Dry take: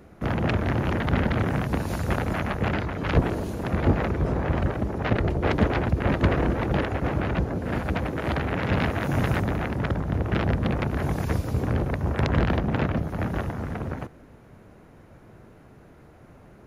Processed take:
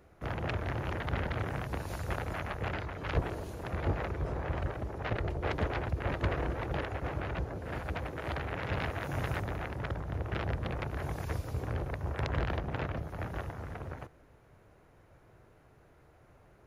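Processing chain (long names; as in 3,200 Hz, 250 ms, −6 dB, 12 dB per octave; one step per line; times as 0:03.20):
parametric band 220 Hz −9.5 dB 1 octave
level −8 dB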